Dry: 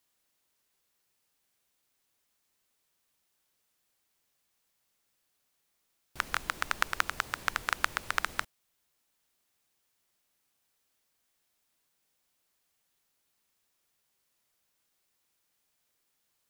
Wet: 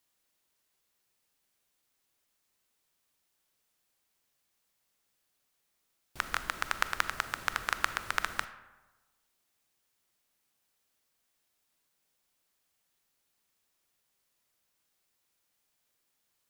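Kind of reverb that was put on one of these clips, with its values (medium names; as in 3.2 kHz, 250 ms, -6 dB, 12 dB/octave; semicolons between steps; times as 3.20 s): algorithmic reverb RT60 1.2 s, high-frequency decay 0.5×, pre-delay 0 ms, DRR 11.5 dB; trim -1 dB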